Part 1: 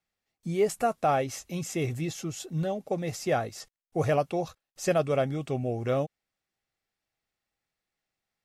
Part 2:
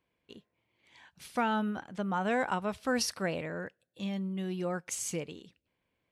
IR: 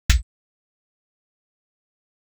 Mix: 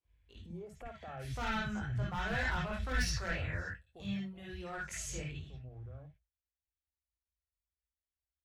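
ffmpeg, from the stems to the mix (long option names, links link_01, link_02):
-filter_complex "[0:a]afwtdn=0.0141,acompressor=threshold=-31dB:ratio=6,alimiter=level_in=13dB:limit=-24dB:level=0:latency=1:release=161,volume=-13dB,volume=-2.5dB,afade=type=out:start_time=3.75:duration=0.34:silence=0.334965,asplit=2[link_01][link_02];[link_02]volume=-14.5dB[link_03];[1:a]adynamicequalizer=threshold=0.00891:dfrequency=1300:dqfactor=0.7:tfrequency=1300:tqfactor=0.7:attack=5:release=100:ratio=0.375:range=2.5:mode=boostabove:tftype=bell,flanger=delay=19.5:depth=3.1:speed=1.7,volume=29dB,asoftclip=hard,volume=-29dB,volume=-6.5dB,asplit=3[link_04][link_05][link_06];[link_05]volume=-11.5dB[link_07];[link_06]apad=whole_len=372554[link_08];[link_01][link_08]sidechaincompress=threshold=-51dB:ratio=8:attack=16:release=370[link_09];[2:a]atrim=start_sample=2205[link_10];[link_03][link_07]amix=inputs=2:normalize=0[link_11];[link_11][link_10]afir=irnorm=-1:irlink=0[link_12];[link_09][link_04][link_12]amix=inputs=3:normalize=0,equalizer=frequency=200:width_type=o:width=1.1:gain=-9.5"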